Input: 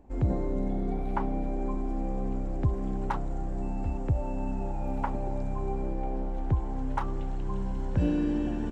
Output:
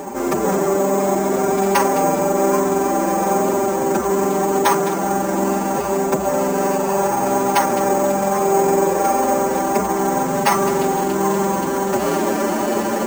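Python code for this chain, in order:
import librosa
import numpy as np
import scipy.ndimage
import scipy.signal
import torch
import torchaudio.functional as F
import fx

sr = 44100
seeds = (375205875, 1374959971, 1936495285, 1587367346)

p1 = fx.bin_compress(x, sr, power=0.6)
p2 = fx.fold_sine(p1, sr, drive_db=12, ceiling_db=-12.5)
p3 = p1 + F.gain(torch.from_numpy(p2), -8.0).numpy()
p4 = fx.rider(p3, sr, range_db=10, speed_s=0.5)
p5 = p4 + 0.6 * np.pad(p4, (int(5.1 * sr / 1000.0), 0))[:len(p4)]
p6 = np.repeat(p5[::6], 6)[:len(p5)]
p7 = scipy.signal.sosfilt(scipy.signal.butter(2, 310.0, 'highpass', fs=sr, output='sos'), p6)
p8 = p7 + fx.echo_single(p7, sr, ms=140, db=-12.0, dry=0)
p9 = fx.stretch_vocoder(p8, sr, factor=1.5)
y = F.gain(torch.from_numpy(p9), 7.0).numpy()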